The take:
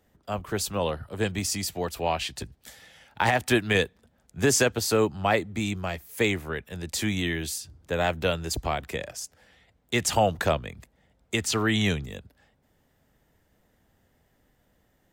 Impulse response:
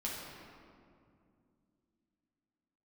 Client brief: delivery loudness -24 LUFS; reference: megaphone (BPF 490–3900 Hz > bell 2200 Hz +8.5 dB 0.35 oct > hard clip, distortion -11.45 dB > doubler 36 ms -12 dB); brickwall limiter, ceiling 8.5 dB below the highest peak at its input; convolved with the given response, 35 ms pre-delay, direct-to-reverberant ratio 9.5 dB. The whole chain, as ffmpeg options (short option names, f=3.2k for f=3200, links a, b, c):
-filter_complex "[0:a]alimiter=limit=-18.5dB:level=0:latency=1,asplit=2[a][b];[1:a]atrim=start_sample=2205,adelay=35[c];[b][c]afir=irnorm=-1:irlink=0,volume=-12dB[d];[a][d]amix=inputs=2:normalize=0,highpass=490,lowpass=3.9k,equalizer=f=2.2k:t=o:w=0.35:g=8.5,asoftclip=type=hard:threshold=-26dB,asplit=2[e][f];[f]adelay=36,volume=-12dB[g];[e][g]amix=inputs=2:normalize=0,volume=9.5dB"